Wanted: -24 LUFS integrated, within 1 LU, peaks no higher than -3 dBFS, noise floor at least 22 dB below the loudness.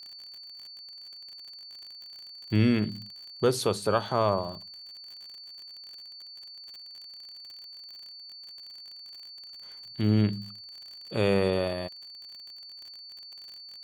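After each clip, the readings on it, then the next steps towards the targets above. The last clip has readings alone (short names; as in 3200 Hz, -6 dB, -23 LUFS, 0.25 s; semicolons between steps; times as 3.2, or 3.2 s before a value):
ticks 46/s; steady tone 4500 Hz; tone level -43 dBFS; loudness -28.0 LUFS; peak -10.5 dBFS; loudness target -24.0 LUFS
-> de-click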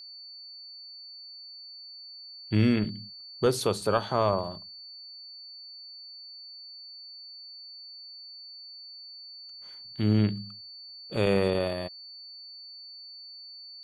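ticks 0/s; steady tone 4500 Hz; tone level -43 dBFS
-> notch 4500 Hz, Q 30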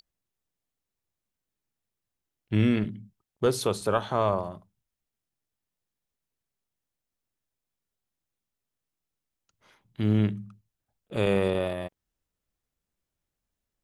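steady tone none; loudness -27.5 LUFS; peak -10.5 dBFS; loudness target -24.0 LUFS
-> gain +3.5 dB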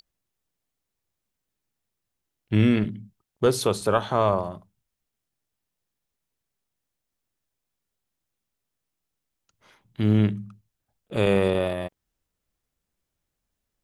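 loudness -23.5 LUFS; peak -7.0 dBFS; noise floor -83 dBFS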